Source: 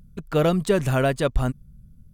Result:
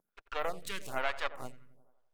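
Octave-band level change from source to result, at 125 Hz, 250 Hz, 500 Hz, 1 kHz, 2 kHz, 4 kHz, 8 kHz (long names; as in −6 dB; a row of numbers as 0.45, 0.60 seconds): −30.5, −27.0, −17.5, −8.5, −6.5, −7.5, −11.0 decibels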